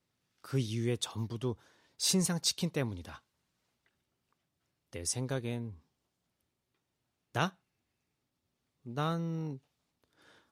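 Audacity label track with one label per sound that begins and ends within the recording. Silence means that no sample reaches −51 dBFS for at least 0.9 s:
4.930000	5.780000	sound
7.350000	7.500000	sound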